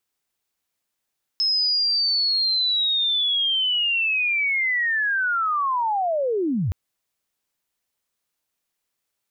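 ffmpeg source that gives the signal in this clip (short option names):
-f lavfi -i "aevalsrc='pow(10,(-18-2*t/5.32)/20)*sin(2*PI*(5200*t-5127*t*t/(2*5.32)))':d=5.32:s=44100"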